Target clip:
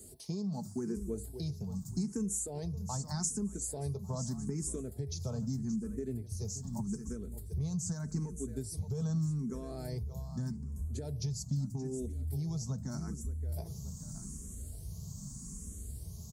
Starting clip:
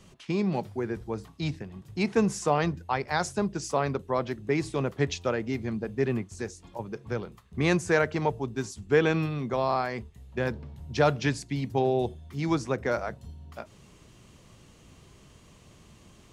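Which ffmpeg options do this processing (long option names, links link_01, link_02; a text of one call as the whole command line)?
ffmpeg -i in.wav -filter_complex "[0:a]aecho=1:1:4.6:0.46,alimiter=limit=-20dB:level=0:latency=1:release=189,firequalizer=gain_entry='entry(330,0);entry(540,-8);entry(1900,-20);entry(2800,-24);entry(4500,-1);entry(7200,13)':delay=0.05:min_phase=1,aecho=1:1:574|1148|1722:0.188|0.0622|0.0205,asubboost=boost=7.5:cutoff=120,acompressor=threshold=-36dB:ratio=6,highpass=60,asplit=2[link_01][link_02];[link_02]afreqshift=0.82[link_03];[link_01][link_03]amix=inputs=2:normalize=1,volume=5.5dB" out.wav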